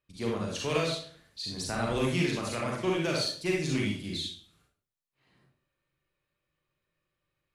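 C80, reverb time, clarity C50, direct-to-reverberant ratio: 6.5 dB, 0.50 s, 0.5 dB, -2.5 dB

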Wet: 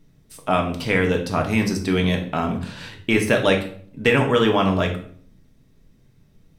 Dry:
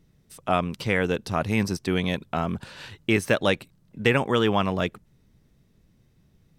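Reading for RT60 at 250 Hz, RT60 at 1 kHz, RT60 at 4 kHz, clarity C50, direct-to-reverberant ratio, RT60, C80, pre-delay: 0.75 s, 0.50 s, 0.45 s, 9.5 dB, 2.0 dB, 0.55 s, 13.5 dB, 3 ms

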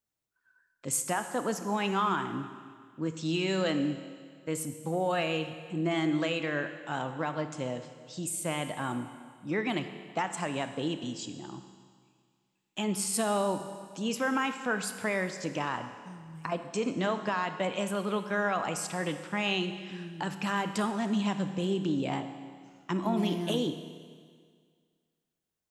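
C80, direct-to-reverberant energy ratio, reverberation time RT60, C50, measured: 10.5 dB, 8.5 dB, 1.9 s, 9.5 dB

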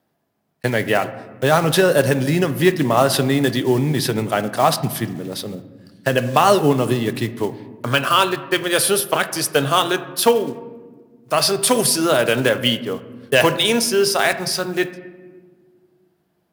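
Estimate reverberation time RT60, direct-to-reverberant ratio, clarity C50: 1.6 s, 11.5 dB, 13.5 dB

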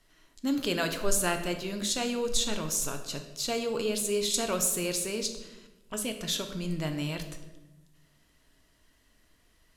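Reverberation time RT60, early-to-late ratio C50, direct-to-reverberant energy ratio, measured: 1.0 s, 9.0 dB, 5.5 dB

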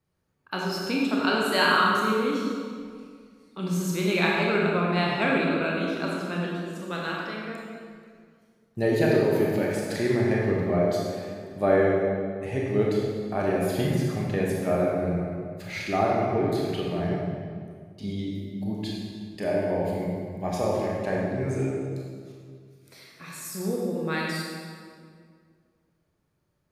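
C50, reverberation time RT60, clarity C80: -1.5 dB, 2.0 s, 0.5 dB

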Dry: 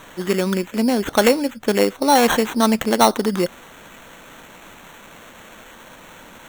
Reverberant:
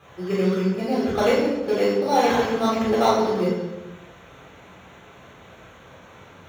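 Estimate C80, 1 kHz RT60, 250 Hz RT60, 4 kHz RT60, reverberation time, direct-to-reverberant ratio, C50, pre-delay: 3.0 dB, 1.0 s, n/a, 0.75 s, 1.1 s, -9.0 dB, 0.5 dB, 3 ms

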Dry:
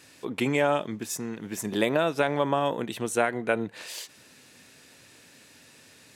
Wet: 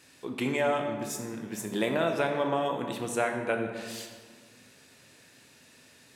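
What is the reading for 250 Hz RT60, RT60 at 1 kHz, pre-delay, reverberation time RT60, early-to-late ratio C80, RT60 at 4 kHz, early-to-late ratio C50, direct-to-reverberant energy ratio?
1.9 s, 1.5 s, 10 ms, 1.6 s, 7.0 dB, 1.0 s, 5.5 dB, 3.0 dB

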